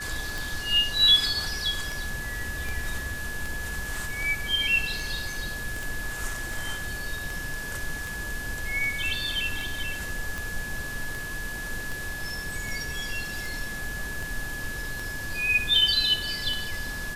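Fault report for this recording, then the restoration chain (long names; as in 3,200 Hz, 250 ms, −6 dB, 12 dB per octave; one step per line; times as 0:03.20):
scratch tick 78 rpm
whistle 1,700 Hz −34 dBFS
0:05.83: click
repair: click removal
notch filter 1,700 Hz, Q 30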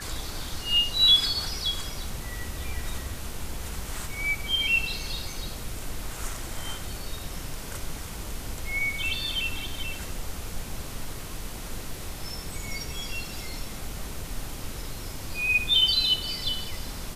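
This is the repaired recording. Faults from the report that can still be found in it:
none of them is left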